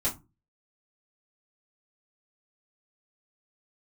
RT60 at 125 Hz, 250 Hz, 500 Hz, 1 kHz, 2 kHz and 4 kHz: 0.50, 0.40, 0.25, 0.25, 0.20, 0.15 seconds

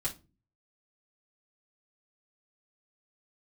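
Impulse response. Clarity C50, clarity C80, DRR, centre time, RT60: 14.0 dB, 23.0 dB, −6.5 dB, 12 ms, 0.30 s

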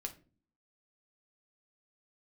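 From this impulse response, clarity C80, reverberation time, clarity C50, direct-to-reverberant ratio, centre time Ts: 20.0 dB, 0.40 s, 15.0 dB, 3.5 dB, 7 ms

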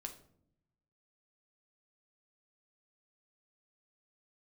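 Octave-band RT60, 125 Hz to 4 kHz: 1.3, 1.1, 0.80, 0.55, 0.45, 0.40 seconds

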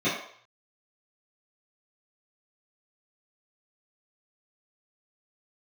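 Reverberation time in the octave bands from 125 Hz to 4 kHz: 0.60, 0.40, 0.55, 0.60, 0.60, 0.55 seconds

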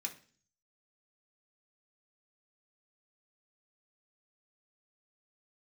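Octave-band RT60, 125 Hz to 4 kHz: 0.75, 0.60, 0.45, 0.40, 0.45, 0.50 seconds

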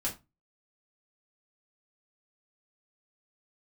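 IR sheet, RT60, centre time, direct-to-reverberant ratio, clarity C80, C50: 0.25 s, 16 ms, −5.5 dB, 19.5 dB, 12.5 dB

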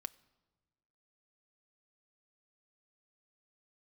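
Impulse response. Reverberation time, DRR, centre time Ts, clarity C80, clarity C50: non-exponential decay, 11.5 dB, 2 ms, 23.5 dB, 22.0 dB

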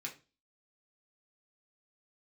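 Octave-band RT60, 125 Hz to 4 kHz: 0.40, 0.40, 0.30, 0.30, 0.30, 0.30 seconds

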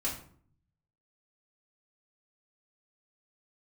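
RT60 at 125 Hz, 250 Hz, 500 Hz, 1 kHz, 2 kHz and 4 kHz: 1.1, 0.75, 0.60, 0.50, 0.40, 0.35 seconds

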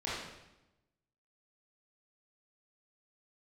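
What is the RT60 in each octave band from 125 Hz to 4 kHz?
1.2, 1.1, 1.0, 0.90, 0.85, 0.85 seconds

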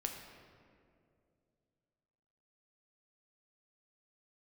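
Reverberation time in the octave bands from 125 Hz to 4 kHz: 3.2, 2.9, 2.8, 2.0, 1.7, 1.2 seconds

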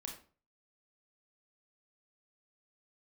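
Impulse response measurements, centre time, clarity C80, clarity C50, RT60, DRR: 24 ms, 11.5 dB, 6.5 dB, 0.40 s, 1.0 dB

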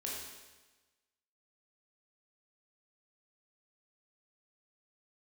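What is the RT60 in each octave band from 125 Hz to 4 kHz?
1.2, 1.2, 1.2, 1.2, 1.2, 1.2 seconds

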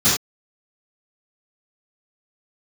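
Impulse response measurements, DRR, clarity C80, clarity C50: −15.5 dB, 6.5 dB, 1.5 dB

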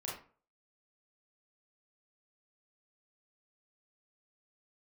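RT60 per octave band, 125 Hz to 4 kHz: 0.45, 0.40, 0.45, 0.40, 0.35, 0.25 seconds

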